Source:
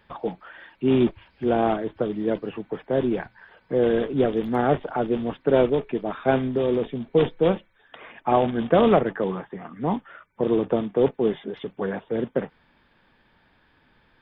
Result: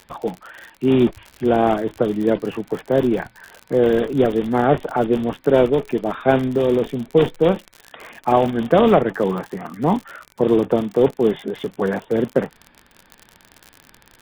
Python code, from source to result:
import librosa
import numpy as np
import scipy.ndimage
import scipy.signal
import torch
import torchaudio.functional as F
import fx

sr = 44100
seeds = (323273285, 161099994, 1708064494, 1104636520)

p1 = fx.rider(x, sr, range_db=3, speed_s=0.5)
p2 = x + (p1 * librosa.db_to_amplitude(0.0))
p3 = fx.dmg_crackle(p2, sr, seeds[0], per_s=61.0, level_db=-26.0)
y = p3 * librosa.db_to_amplitude(-1.0)